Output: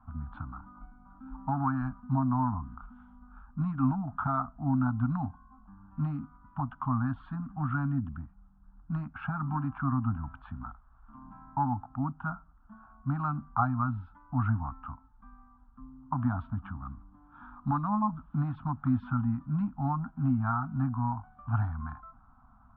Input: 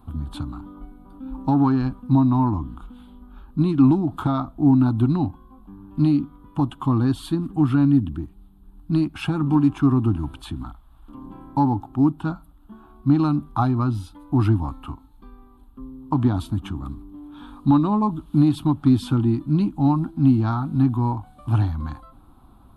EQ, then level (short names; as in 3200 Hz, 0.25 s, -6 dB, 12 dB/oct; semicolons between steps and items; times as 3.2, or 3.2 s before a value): Chebyshev band-stop 250–660 Hz, order 3; ladder low-pass 1600 Hz, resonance 60%; +2.0 dB